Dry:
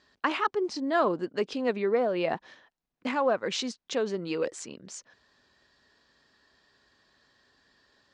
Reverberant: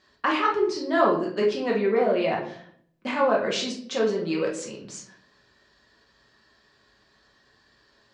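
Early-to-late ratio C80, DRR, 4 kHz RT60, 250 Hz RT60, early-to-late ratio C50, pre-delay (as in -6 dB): 11.0 dB, -2.5 dB, 0.40 s, 0.85 s, 6.5 dB, 5 ms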